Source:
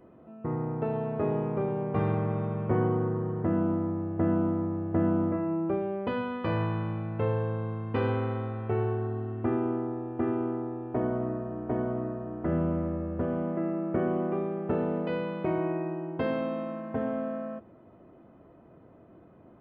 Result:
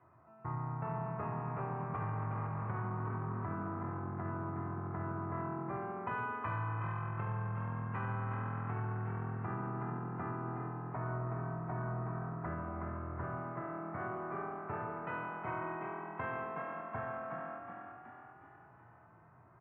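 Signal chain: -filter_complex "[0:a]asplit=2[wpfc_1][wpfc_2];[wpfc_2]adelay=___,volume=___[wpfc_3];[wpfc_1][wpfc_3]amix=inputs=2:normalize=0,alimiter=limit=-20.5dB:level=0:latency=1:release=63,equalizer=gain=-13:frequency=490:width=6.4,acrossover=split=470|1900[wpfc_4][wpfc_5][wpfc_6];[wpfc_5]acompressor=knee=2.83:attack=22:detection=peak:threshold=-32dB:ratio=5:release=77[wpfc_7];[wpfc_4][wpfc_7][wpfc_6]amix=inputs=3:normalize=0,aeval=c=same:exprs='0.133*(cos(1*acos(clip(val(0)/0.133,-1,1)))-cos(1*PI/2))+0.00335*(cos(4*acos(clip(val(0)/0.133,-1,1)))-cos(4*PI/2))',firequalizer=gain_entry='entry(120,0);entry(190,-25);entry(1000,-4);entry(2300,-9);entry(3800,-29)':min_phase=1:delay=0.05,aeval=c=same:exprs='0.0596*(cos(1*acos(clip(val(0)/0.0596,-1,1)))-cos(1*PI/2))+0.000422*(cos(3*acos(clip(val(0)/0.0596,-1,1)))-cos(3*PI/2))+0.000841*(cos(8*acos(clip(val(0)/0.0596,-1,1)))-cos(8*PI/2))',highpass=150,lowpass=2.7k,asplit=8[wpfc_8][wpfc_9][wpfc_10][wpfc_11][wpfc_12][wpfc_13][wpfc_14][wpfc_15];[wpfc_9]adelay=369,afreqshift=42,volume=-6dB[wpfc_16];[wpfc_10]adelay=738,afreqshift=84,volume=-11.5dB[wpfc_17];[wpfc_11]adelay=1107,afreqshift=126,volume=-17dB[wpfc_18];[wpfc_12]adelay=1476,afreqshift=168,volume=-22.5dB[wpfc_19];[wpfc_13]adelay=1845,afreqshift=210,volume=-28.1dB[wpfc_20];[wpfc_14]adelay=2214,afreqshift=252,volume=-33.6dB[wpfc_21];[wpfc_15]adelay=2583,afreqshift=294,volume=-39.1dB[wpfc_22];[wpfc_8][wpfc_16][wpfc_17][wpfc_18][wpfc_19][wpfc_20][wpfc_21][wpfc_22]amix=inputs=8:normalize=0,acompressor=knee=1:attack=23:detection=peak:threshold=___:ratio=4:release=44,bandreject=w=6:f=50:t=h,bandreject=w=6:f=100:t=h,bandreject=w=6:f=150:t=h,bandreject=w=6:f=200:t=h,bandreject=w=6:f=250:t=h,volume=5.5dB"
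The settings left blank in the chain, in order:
33, -13dB, -43dB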